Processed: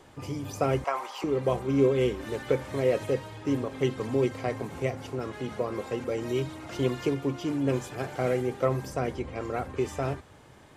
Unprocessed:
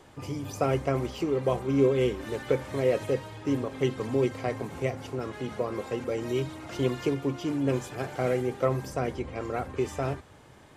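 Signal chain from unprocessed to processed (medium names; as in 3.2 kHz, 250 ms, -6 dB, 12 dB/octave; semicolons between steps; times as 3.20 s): 0.84–1.24 s: resonant high-pass 920 Hz, resonance Q 3.4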